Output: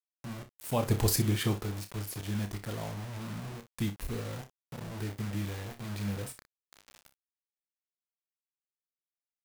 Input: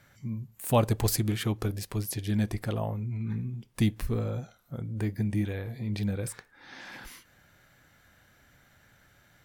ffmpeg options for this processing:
-filter_complex "[0:a]asettb=1/sr,asplit=3[a][b][c];[a]atrim=end=0.874[d];[b]atrim=start=0.87:end=1.59,asetpts=PTS-STARTPTS,afade=t=in:d=0.004:c=qsin,afade=t=out:st=0.716:d=0.004:c=qsin,acontrast=79[e];[c]atrim=start=1.586[f];[d][e]acrossfade=d=0.004:c1=hsin:c2=qsin[g];[g][f]acrossfade=d=0.004:c1=qsin:c2=hsin,acrusher=bits=5:mix=0:aa=0.000001,aecho=1:1:30|60:0.355|0.2,volume=-7dB"

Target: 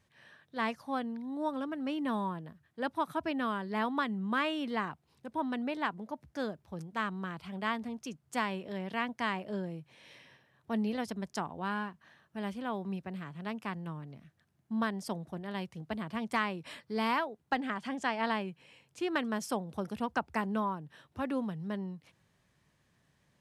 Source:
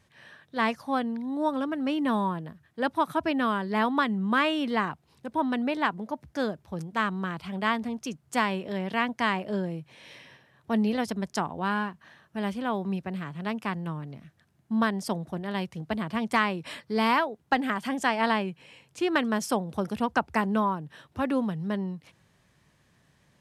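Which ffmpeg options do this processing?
-filter_complex "[0:a]asettb=1/sr,asplit=3[a][b][c];[a]atrim=end=17.574[d];[b]atrim=start=17.57:end=18.31,asetpts=PTS-STARTPTS,afade=t=in:d=0.004:c=qsin,afade=t=out:st=0.736:d=0.004:c=qsin,lowpass=7.3k[e];[c]atrim=start=18.306[f];[d][e]acrossfade=d=0.004:c1=hsin:c2=qsin[g];[g][f]acrossfade=d=0.004:c1=qsin:c2=hsin,volume=-7dB"

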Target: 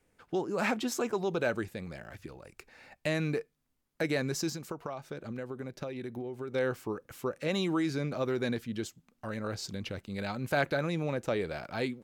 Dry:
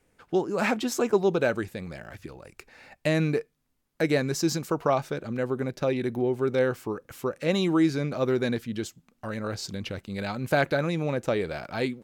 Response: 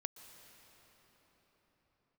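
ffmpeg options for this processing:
-filter_complex "[0:a]acrossover=split=720[a][b];[a]alimiter=limit=-21dB:level=0:latency=1[c];[c][b]amix=inputs=2:normalize=0,asplit=3[d][e][f];[d]afade=t=out:st=4.49:d=0.02[g];[e]acompressor=threshold=-31dB:ratio=10,afade=t=in:st=4.49:d=0.02,afade=t=out:st=6.54:d=0.02[h];[f]afade=t=in:st=6.54:d=0.02[i];[g][h][i]amix=inputs=3:normalize=0,volume=-4dB"

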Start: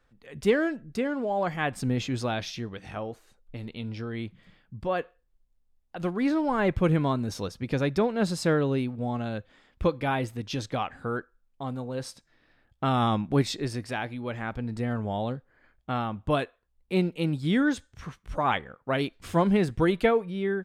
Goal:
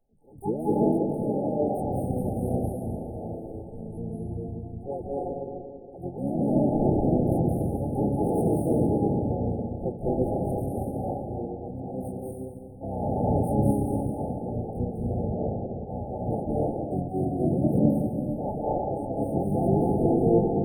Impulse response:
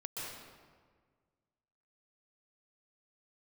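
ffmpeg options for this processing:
-filter_complex "[1:a]atrim=start_sample=2205,asetrate=29106,aresample=44100[a];[0:a][a]afir=irnorm=-1:irlink=0,asplit=4[b][c][d][e];[c]asetrate=22050,aresample=44100,atempo=2,volume=-5dB[f];[d]asetrate=33038,aresample=44100,atempo=1.33484,volume=0dB[g];[e]asetrate=88200,aresample=44100,atempo=0.5,volume=-4dB[h];[b][f][g][h]amix=inputs=4:normalize=0,afftfilt=real='re*(1-between(b*sr/4096,880,8500))':imag='im*(1-between(b*sr/4096,880,8500))':win_size=4096:overlap=0.75,volume=-6.5dB"

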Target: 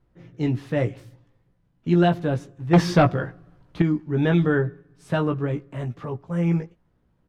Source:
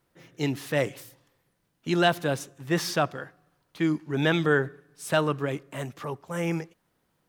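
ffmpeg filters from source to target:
-filter_complex "[0:a]aemphasis=mode=reproduction:type=riaa,asplit=2[a][b];[b]adelay=17,volume=-5.5dB[c];[a][c]amix=inputs=2:normalize=0,asettb=1/sr,asplit=3[d][e][f];[d]atrim=end=2.734[g];[e]atrim=start=2.73:end=3.82,asetpts=PTS-STARTPTS,afade=t=in:d=0.004:c=qsin,afade=t=out:st=1.086:d=0.004:c=qsin,aeval=exprs='0.473*sin(PI/2*1.78*val(0)/0.473)':c=same[h];[f]atrim=start=3.816[i];[g][h]acrossfade=d=0.004:c1=hsin:c2=qsin[j];[j][i]acrossfade=d=0.004:c1=qsin:c2=hsin,volume=-2.5dB"

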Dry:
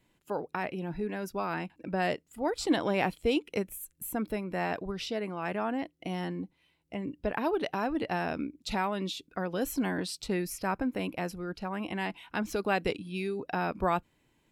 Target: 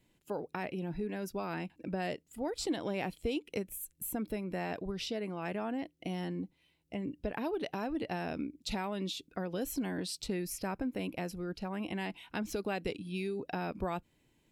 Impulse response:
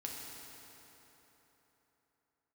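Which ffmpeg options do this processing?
-af "equalizer=f=1.2k:t=o:w=1.5:g=-6,acompressor=threshold=-33dB:ratio=2.5"

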